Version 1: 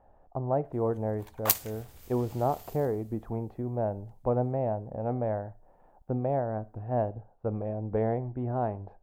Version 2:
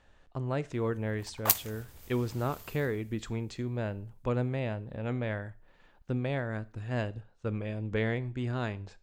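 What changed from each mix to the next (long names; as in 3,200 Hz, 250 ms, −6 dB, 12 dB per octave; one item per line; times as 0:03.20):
speech: remove low-pass with resonance 760 Hz, resonance Q 3.8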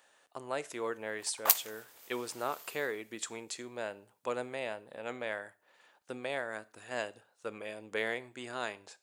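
speech: remove high-frequency loss of the air 120 metres
master: add high-pass filter 500 Hz 12 dB per octave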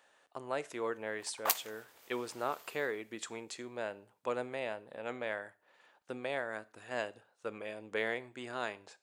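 master: add high-shelf EQ 5,100 Hz −8 dB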